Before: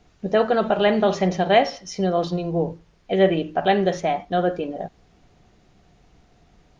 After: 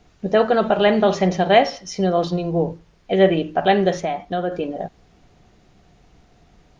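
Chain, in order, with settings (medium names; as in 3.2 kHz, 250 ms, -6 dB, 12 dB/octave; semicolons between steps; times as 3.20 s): 4.02–4.52 s: compression 2:1, threshold -26 dBFS, peak gain reduction 6 dB; trim +2.5 dB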